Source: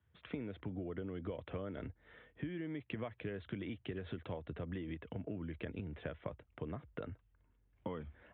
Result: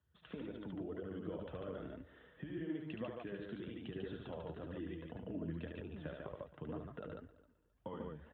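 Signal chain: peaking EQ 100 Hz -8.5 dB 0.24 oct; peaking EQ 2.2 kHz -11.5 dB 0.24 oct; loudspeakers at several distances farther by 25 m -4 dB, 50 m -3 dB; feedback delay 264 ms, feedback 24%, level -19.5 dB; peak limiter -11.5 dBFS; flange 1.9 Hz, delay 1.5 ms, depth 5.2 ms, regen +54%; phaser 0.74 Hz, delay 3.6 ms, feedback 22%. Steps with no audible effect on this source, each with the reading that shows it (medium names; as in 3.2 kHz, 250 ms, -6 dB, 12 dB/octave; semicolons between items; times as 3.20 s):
peak limiter -11.5 dBFS: peak at its input -26.5 dBFS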